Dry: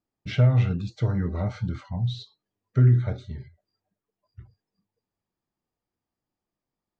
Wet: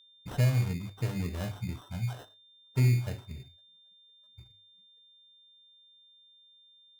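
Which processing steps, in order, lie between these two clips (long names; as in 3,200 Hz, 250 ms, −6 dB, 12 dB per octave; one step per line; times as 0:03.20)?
mains-hum notches 50/100 Hz
sample-rate reduction 2,300 Hz, jitter 0%
steady tone 3,600 Hz −51 dBFS
level −6.5 dB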